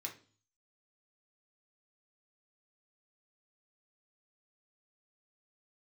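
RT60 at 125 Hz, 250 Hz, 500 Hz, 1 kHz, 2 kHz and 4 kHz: 0.70, 0.55, 0.40, 0.35, 0.35, 0.45 s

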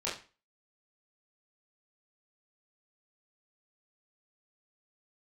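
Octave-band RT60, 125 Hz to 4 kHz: 0.40, 0.35, 0.35, 0.35, 0.35, 0.30 s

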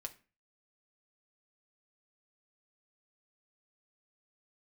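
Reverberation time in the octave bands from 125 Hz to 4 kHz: 0.45, 0.40, 0.35, 0.35, 0.35, 0.30 s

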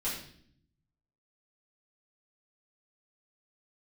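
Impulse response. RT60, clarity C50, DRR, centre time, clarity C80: 0.60 s, 3.5 dB, -9.5 dB, 42 ms, 7.0 dB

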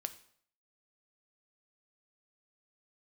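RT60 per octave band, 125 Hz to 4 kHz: 0.60, 0.60, 0.60, 0.60, 0.55, 0.55 s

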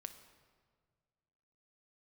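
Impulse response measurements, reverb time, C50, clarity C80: 1.8 s, 10.5 dB, 12.0 dB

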